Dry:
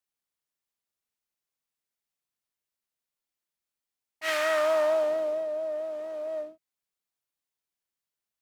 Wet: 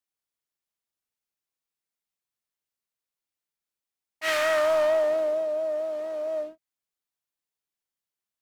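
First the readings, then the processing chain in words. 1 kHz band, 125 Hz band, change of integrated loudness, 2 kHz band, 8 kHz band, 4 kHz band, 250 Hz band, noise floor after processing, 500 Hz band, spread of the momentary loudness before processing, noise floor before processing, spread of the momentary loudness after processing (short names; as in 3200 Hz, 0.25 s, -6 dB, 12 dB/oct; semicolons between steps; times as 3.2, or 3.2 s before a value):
+1.5 dB, n/a, +2.5 dB, +2.5 dB, +2.5 dB, +2.5 dB, +1.5 dB, under -85 dBFS, +2.5 dB, 11 LU, under -85 dBFS, 10 LU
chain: sample leveller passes 1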